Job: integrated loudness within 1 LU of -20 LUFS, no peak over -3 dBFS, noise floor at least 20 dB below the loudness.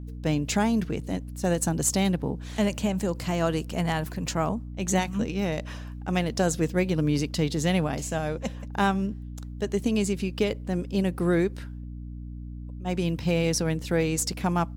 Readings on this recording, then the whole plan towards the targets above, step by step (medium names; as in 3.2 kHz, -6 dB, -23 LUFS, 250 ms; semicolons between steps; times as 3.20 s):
hum 60 Hz; highest harmonic 300 Hz; hum level -35 dBFS; loudness -27.0 LUFS; peak level -10.5 dBFS; loudness target -20.0 LUFS
-> hum notches 60/120/180/240/300 Hz; trim +7 dB